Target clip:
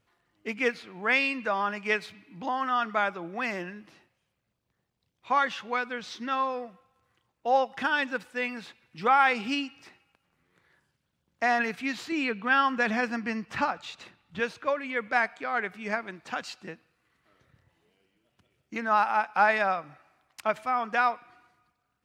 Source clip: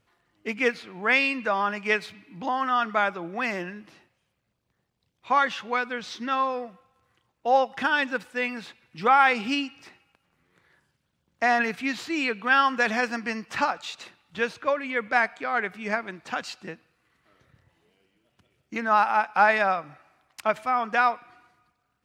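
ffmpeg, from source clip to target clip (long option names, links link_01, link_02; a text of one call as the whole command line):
ffmpeg -i in.wav -filter_complex "[0:a]asettb=1/sr,asplit=3[link_01][link_02][link_03];[link_01]atrim=end=12.124[link_04];[link_02]atrim=start=12.12:end=14.4,asetpts=PTS-STARTPTS,afade=type=in:duration=0.004:curve=qsin,afade=type=out:start_time=2.276:duration=0.004:curve=qsin,bass=frequency=250:gain=7,treble=frequency=4000:gain=-5[link_05];[link_03]atrim=start=14.396[link_06];[link_04][link_05]acrossfade=duration=0.004:curve1=hsin:curve2=qsin[link_07];[link_07][link_06]acrossfade=duration=0.004:curve1=qsin:curve2=hsin,volume=-3dB" out.wav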